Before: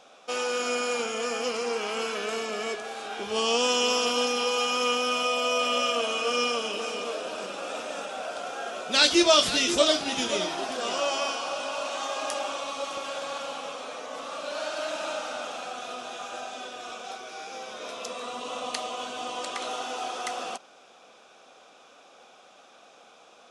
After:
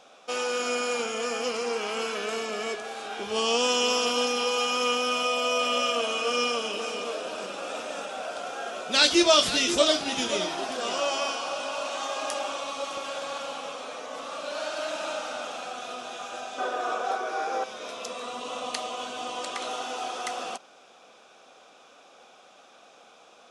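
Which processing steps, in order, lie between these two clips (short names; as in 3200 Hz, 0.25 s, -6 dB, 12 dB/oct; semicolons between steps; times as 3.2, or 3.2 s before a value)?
16.58–17.64 band shelf 720 Hz +11 dB 2.9 oct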